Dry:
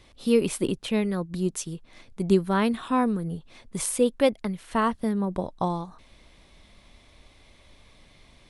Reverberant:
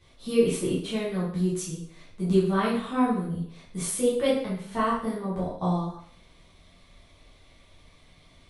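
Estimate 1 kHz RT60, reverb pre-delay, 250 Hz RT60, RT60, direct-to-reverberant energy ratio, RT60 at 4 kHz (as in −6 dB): 0.60 s, 4 ms, 0.60 s, 0.60 s, −9.0 dB, 0.55 s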